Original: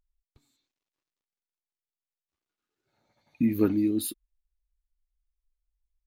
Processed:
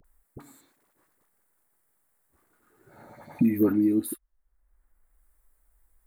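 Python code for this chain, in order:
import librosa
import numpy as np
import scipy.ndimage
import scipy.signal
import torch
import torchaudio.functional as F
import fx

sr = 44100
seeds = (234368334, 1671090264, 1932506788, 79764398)

y = fx.band_shelf(x, sr, hz=4000.0, db=-15.5, octaves=1.7)
y = fx.dispersion(y, sr, late='highs', ms=45.0, hz=670.0)
y = fx.band_squash(y, sr, depth_pct=70)
y = y * librosa.db_to_amplitude(3.0)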